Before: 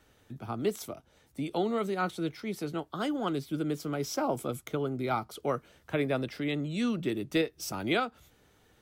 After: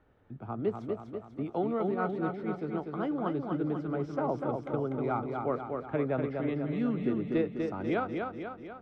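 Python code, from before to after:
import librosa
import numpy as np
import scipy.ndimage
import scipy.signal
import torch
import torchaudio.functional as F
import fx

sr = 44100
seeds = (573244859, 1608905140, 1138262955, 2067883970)

y = scipy.signal.sosfilt(scipy.signal.butter(2, 1400.0, 'lowpass', fs=sr, output='sos'), x)
y = fx.echo_feedback(y, sr, ms=245, feedback_pct=56, wet_db=-4.5)
y = F.gain(torch.from_numpy(y), -1.0).numpy()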